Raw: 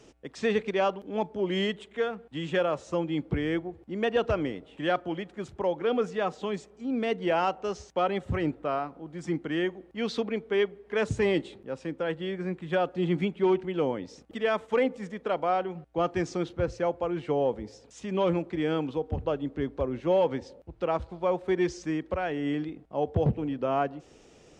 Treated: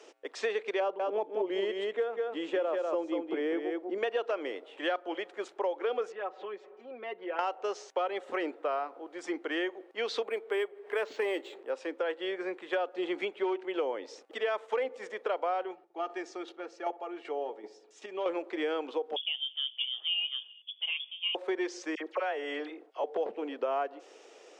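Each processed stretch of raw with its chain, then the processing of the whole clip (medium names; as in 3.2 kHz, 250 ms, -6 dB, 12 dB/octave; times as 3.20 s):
0.80–3.98 s: tilt shelf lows +6.5 dB, about 780 Hz + delay 194 ms -5.5 dB
6.12–7.39 s: low-pass 2.3 kHz + comb 5.4 ms, depth 71% + compression 2:1, threshold -45 dBFS
10.23–11.70 s: bass shelf 130 Hz -10.5 dB + upward compressor, threshold -42 dBFS + decimation joined by straight lines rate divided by 4×
15.71–18.26 s: square tremolo 2.6 Hz, depth 60%, duty 10% + comb of notches 510 Hz + filtered feedback delay 63 ms, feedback 71%, low-pass 1.3 kHz, level -19 dB
19.16–21.35 s: peaking EQ 1.8 kHz -13 dB 1.7 oct + flange 1.3 Hz, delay 0.5 ms, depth 9.7 ms, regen +68% + frequency inversion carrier 3.4 kHz
21.95–23.04 s: high-pass 370 Hz + phase dispersion lows, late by 57 ms, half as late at 1.6 kHz
whole clip: inverse Chebyshev high-pass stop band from 150 Hz, stop band 50 dB; treble shelf 7.1 kHz -8.5 dB; compression 4:1, threshold -33 dBFS; trim +4 dB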